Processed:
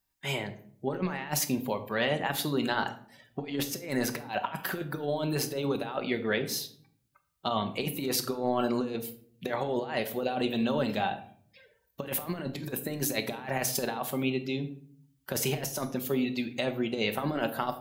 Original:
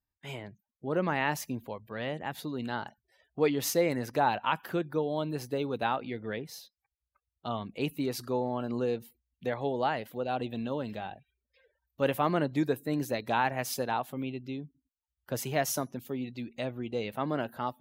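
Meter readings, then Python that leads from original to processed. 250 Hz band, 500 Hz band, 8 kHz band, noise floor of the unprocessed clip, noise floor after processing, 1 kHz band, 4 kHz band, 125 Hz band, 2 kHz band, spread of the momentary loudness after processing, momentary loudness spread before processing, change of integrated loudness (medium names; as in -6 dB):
+2.0 dB, 0.0 dB, +5.5 dB, under -85 dBFS, -72 dBFS, -2.0 dB, +6.0 dB, +1.0 dB, +2.0 dB, 7 LU, 12 LU, +1.0 dB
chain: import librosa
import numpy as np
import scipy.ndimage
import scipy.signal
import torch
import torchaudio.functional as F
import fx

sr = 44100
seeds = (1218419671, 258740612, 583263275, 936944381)

y = fx.tilt_eq(x, sr, slope=1.5)
y = fx.over_compress(y, sr, threshold_db=-35.0, ratio=-0.5)
y = fx.room_shoebox(y, sr, seeds[0], volume_m3=800.0, walls='furnished', distance_m=1.1)
y = F.gain(torch.from_numpy(y), 4.5).numpy()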